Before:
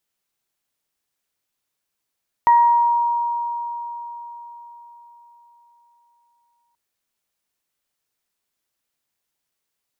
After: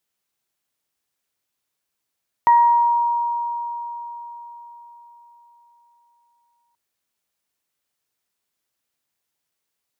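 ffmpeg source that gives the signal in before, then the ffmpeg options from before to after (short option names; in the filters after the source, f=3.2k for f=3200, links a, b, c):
-f lavfi -i "aevalsrc='0.355*pow(10,-3*t/4.48)*sin(2*PI*946*t)+0.0501*pow(10,-3*t/0.76)*sin(2*PI*1892*t)':d=4.28:s=44100"
-af "highpass=43"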